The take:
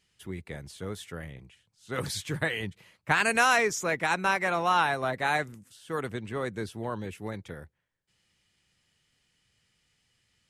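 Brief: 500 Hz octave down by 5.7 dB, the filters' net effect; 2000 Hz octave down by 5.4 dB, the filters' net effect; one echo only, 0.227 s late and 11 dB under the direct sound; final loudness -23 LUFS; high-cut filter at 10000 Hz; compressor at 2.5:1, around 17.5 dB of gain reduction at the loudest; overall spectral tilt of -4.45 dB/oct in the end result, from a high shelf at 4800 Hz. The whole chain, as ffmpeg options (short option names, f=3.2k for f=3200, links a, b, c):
-af "lowpass=10k,equalizer=f=500:t=o:g=-7,equalizer=f=2k:t=o:g=-6,highshelf=f=4.8k:g=-5,acompressor=threshold=-50dB:ratio=2.5,aecho=1:1:227:0.282,volume=24.5dB"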